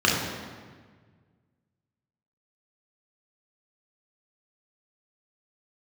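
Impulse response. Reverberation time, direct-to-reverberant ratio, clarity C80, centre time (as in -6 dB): 1.6 s, -4.0 dB, 3.5 dB, 76 ms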